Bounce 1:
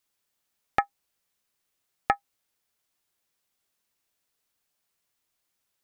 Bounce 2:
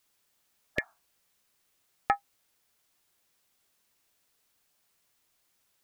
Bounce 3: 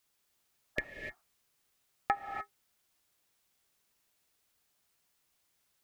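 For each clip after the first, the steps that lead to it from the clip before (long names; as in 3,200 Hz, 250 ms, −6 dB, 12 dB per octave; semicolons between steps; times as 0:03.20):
healed spectral selection 0:00.80–0:01.01, 630–1,700 Hz both; brickwall limiter −16 dBFS, peak gain reduction 10.5 dB; level +6 dB
sub-octave generator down 1 octave, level −6 dB; reverb whose tail is shaped and stops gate 320 ms rising, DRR 5 dB; level −4 dB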